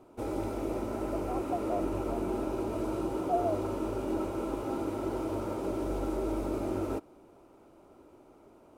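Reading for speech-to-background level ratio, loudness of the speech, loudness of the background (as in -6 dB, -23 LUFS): -4.0 dB, -38.0 LUFS, -34.0 LUFS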